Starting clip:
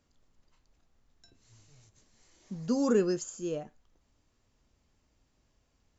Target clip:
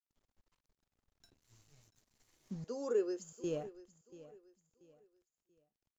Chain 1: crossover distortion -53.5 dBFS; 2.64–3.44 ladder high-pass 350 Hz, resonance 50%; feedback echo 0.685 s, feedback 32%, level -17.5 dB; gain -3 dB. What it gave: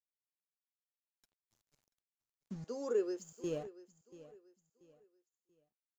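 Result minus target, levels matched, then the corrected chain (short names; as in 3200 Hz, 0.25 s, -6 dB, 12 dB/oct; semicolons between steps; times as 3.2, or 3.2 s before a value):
crossover distortion: distortion +7 dB
crossover distortion -64.5 dBFS; 2.64–3.44 ladder high-pass 350 Hz, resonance 50%; feedback echo 0.685 s, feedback 32%, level -17.5 dB; gain -3 dB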